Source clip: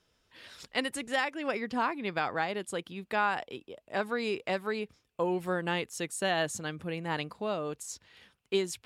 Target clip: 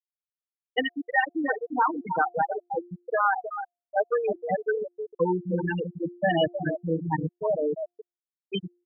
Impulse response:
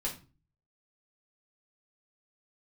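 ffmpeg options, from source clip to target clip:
-filter_complex "[0:a]asplit=2[s0][s1];[s1]adelay=160,highpass=300,lowpass=3400,asoftclip=type=hard:threshold=0.0501,volume=0.0501[s2];[s0][s2]amix=inputs=2:normalize=0,asplit=2[s3][s4];[1:a]atrim=start_sample=2205,highshelf=f=2300:g=6.5[s5];[s4][s5]afir=irnorm=-1:irlink=0,volume=0.0631[s6];[s3][s6]amix=inputs=2:normalize=0,acontrast=44,aecho=1:1:6.5:0.78,asplit=2[s7][s8];[s8]aecho=0:1:313|626|939|1252|1565|1878:0.501|0.241|0.115|0.0554|0.0266|0.0128[s9];[s7][s9]amix=inputs=2:normalize=0,afftfilt=real='re*gte(hypot(re,im),0.355)':imag='im*gte(hypot(re,im),0.355)':win_size=1024:overlap=0.75,bandreject=f=351.3:t=h:w=4,bandreject=f=702.6:t=h:w=4"

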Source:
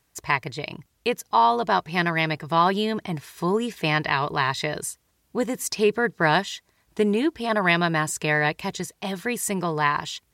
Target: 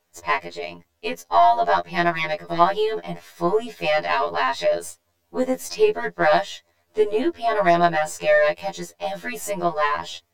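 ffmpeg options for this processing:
-af "aeval=exprs='if(lt(val(0),0),0.708*val(0),val(0))':c=same,equalizer=f=160:t=o:w=0.67:g=-7,equalizer=f=630:t=o:w=0.67:g=10,equalizer=f=10000:t=o:w=0.67:g=-6,afftfilt=real='re*2*eq(mod(b,4),0)':imag='im*2*eq(mod(b,4),0)':win_size=2048:overlap=0.75,volume=1.33"

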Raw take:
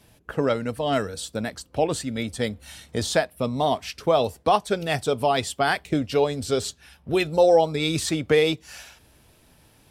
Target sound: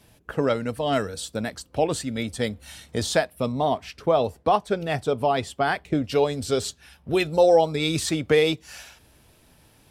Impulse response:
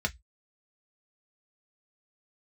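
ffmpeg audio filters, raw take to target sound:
-filter_complex "[0:a]asettb=1/sr,asplit=3[s0][s1][s2];[s0]atrim=end=3.524[s3];[s1]atrim=start=3.52:end=6.04,asetpts=PTS-STARTPTS,afade=t=in:d=0.004:c=qsin,afade=t=out:st=2.516:d=0.004:c=qsin,highshelf=f=3000:g=-9.5[s4];[s2]atrim=start=6.036[s5];[s3][s4]acrossfade=d=0.004:c1=hsin:c2=qsin[s6];[s6][s5]acrossfade=d=0.004:c1=qsin:c2=hsin"

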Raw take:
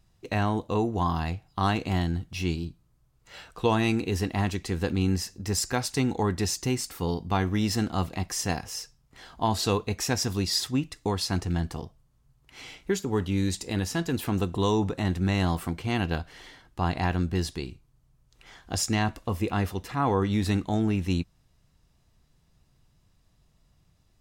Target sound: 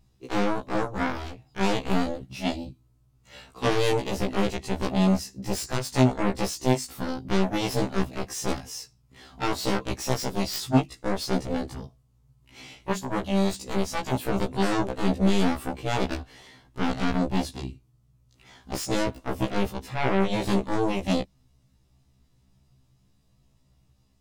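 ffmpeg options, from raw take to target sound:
-af "equalizer=f=100:t=o:w=0.67:g=7,equalizer=f=250:t=o:w=0.67:g=6,equalizer=f=1600:t=o:w=0.67:g=-4,aeval=exprs='0.376*(cos(1*acos(clip(val(0)/0.376,-1,1)))-cos(1*PI/2))+0.0133*(cos(2*acos(clip(val(0)/0.376,-1,1)))-cos(2*PI/2))+0.119*(cos(7*acos(clip(val(0)/0.376,-1,1)))-cos(7*PI/2))':c=same,afftfilt=real='re*1.73*eq(mod(b,3),0)':imag='im*1.73*eq(mod(b,3),0)':win_size=2048:overlap=0.75"

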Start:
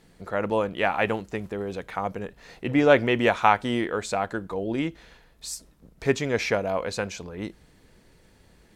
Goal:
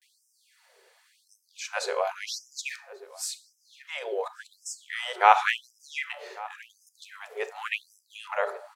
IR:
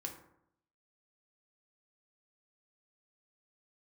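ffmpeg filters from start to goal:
-filter_complex "[0:a]areverse,asplit=2[s0][s1];[s1]adelay=1141,lowpass=f=2300:p=1,volume=0.0944,asplit=2[s2][s3];[s3]adelay=1141,lowpass=f=2300:p=1,volume=0.38,asplit=2[s4][s5];[s5]adelay=1141,lowpass=f=2300:p=1,volume=0.38[s6];[s0][s2][s4][s6]amix=inputs=4:normalize=0,asplit=2[s7][s8];[1:a]atrim=start_sample=2205,asetrate=33516,aresample=44100[s9];[s8][s9]afir=irnorm=-1:irlink=0,volume=0.944[s10];[s7][s10]amix=inputs=2:normalize=0,afftfilt=real='re*gte(b*sr/1024,360*pow(5100/360,0.5+0.5*sin(2*PI*0.91*pts/sr)))':imag='im*gte(b*sr/1024,360*pow(5100/360,0.5+0.5*sin(2*PI*0.91*pts/sr)))':win_size=1024:overlap=0.75,volume=0.668"

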